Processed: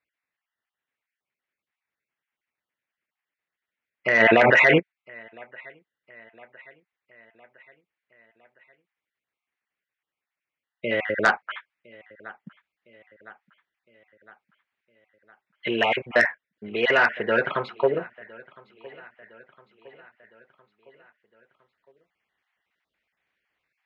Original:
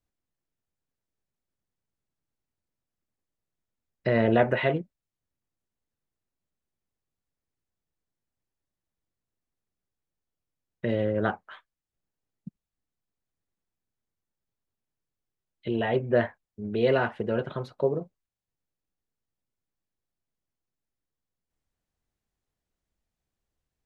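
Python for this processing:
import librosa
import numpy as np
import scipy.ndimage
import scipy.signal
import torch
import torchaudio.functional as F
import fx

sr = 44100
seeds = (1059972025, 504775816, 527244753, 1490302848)

p1 = fx.spec_dropout(x, sr, seeds[0], share_pct=25)
p2 = fx.highpass(p1, sr, hz=690.0, slope=6)
p3 = fx.rider(p2, sr, range_db=4, speed_s=0.5)
p4 = scipy.signal.sosfilt(scipy.signal.butter(2, 2900.0, 'lowpass', fs=sr, output='sos'), p3)
p5 = fx.peak_eq(p4, sr, hz=2100.0, db=13.5, octaves=1.3)
p6 = p5 + fx.echo_feedback(p5, sr, ms=1010, feedback_pct=54, wet_db=-23.5, dry=0)
p7 = fx.cheby_harmonics(p6, sr, harmonics=(5,), levels_db=(-17,), full_scale_db=-7.5)
p8 = fx.env_flatten(p7, sr, amount_pct=100, at=(4.19, 4.78), fade=0.02)
y = p8 * librosa.db_to_amplitude(2.5)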